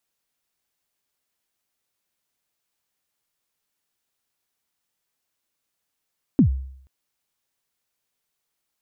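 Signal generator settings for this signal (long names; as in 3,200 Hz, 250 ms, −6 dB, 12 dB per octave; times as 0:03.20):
synth kick length 0.48 s, from 310 Hz, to 66 Hz, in 99 ms, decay 0.66 s, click off, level −9 dB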